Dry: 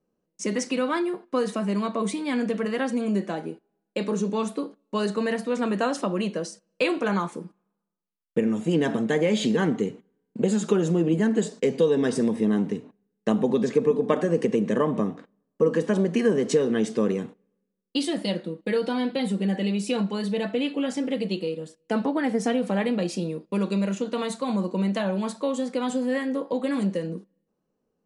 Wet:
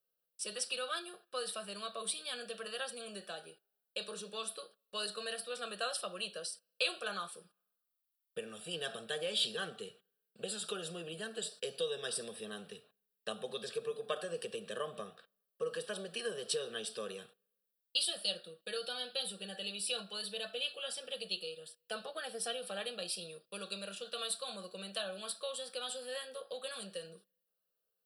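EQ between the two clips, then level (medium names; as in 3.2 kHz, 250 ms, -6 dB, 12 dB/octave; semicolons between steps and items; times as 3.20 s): pre-emphasis filter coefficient 0.97; dynamic bell 1.9 kHz, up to -4 dB, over -56 dBFS, Q 1.8; static phaser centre 1.4 kHz, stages 8; +8.0 dB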